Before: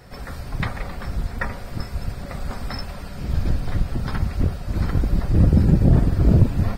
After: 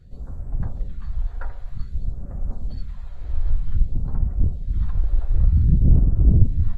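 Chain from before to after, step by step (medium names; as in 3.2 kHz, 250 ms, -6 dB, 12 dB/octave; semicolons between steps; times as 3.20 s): tilt EQ -3 dB/octave; phase shifter stages 2, 0.53 Hz, lowest notch 170–4000 Hz; formant shift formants -3 st; trim -11.5 dB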